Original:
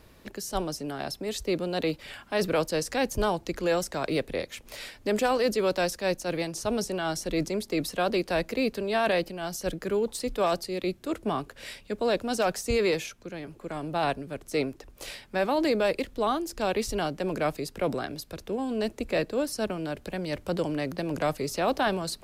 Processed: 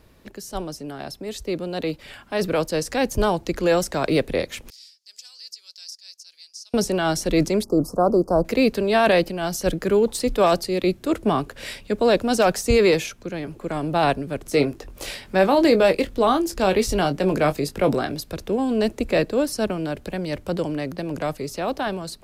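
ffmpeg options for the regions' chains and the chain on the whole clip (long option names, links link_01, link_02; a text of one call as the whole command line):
ffmpeg -i in.wav -filter_complex "[0:a]asettb=1/sr,asplit=3[link_01][link_02][link_03];[link_01]atrim=end=4.704[link_04];[link_02]atrim=start=4.7:end=6.74,asetpts=PTS-STARTPTS,afade=type=in:duration=0.004:curve=qsin,afade=type=out:start_time=2.036:duration=0.004:curve=qsin,bandpass=frequency=5000:width_type=q:width=4.9,aderivative[link_05];[link_03]atrim=start=6.736[link_06];[link_04][link_05]acrossfade=duration=0.004:curve1=hsin:curve2=qsin[link_07];[link_07][link_06]acrossfade=duration=0.004:curve1=qsin:curve2=hsin,asettb=1/sr,asplit=3[link_08][link_09][link_10];[link_08]atrim=end=7.644[link_11];[link_09]atrim=start=7.64:end=8.45,asetpts=PTS-STARTPTS,afade=type=in:duration=0.004:curve=qsin,afade=type=out:start_time=0.806:duration=0.004:curve=qsin,asuperstop=centerf=2500:order=12:qfactor=0.71,highshelf=frequency=3000:width_type=q:width=1.5:gain=-8[link_12];[link_10]atrim=start=8.446[link_13];[link_11][link_12]acrossfade=duration=0.004:curve1=hsin:curve2=qsin[link_14];[link_14][link_13]acrossfade=duration=0.004:curve1=qsin:curve2=hsin,asettb=1/sr,asplit=3[link_15][link_16][link_17];[link_15]atrim=end=14.464[link_18];[link_16]atrim=start=14.46:end=18.13,asetpts=PTS-STARTPTS,afade=type=in:duration=0.004:curve=qsin,afade=type=out:start_time=3.666:duration=0.004:curve=qsin,acompressor=mode=upward:threshold=-46dB:ratio=2.5:attack=3.2:release=140:knee=2.83:detection=peak,asplit=2[link_19][link_20];[link_20]adelay=21,volume=-10dB[link_21];[link_19][link_21]amix=inputs=2:normalize=0,atrim=end_sample=161847[link_22];[link_17]atrim=start=18.126[link_23];[link_18][link_22]acrossfade=duration=0.004:curve1=hsin:curve2=qsin[link_24];[link_24][link_23]acrossfade=duration=0.004:curve1=qsin:curve2=hsin,lowshelf=frequency=500:gain=3,dynaudnorm=framelen=550:gausssize=11:maxgain=8.5dB,volume=-1.5dB" out.wav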